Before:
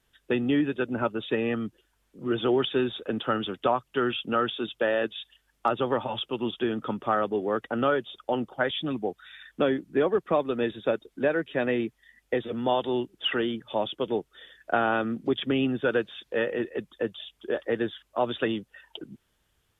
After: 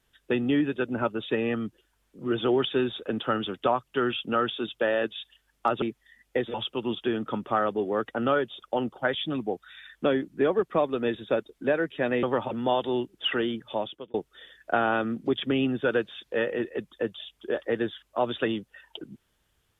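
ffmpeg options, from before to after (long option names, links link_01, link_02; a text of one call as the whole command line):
ffmpeg -i in.wav -filter_complex "[0:a]asplit=6[link_01][link_02][link_03][link_04][link_05][link_06];[link_01]atrim=end=5.822[link_07];[link_02]atrim=start=11.788:end=12.512[link_08];[link_03]atrim=start=6.098:end=11.792[link_09];[link_04]atrim=start=5.818:end=6.102[link_10];[link_05]atrim=start=12.508:end=14.14,asetpts=PTS-STARTPTS,afade=type=out:start_time=1.182:duration=0.45[link_11];[link_06]atrim=start=14.14,asetpts=PTS-STARTPTS,afade=type=in:duration=0.004:curve=hsin[link_12];[link_07][link_08]acrossfade=duration=0.004:curve1=hsin:curve2=hsin[link_13];[link_13][link_09]acrossfade=duration=0.004:curve1=hsin:curve2=hsin[link_14];[link_14][link_10]acrossfade=duration=0.004:curve1=hsin:curve2=hsin[link_15];[link_11][link_12]concat=n=2:v=0:a=1[link_16];[link_15][link_16]acrossfade=duration=0.004:curve1=hsin:curve2=hsin" out.wav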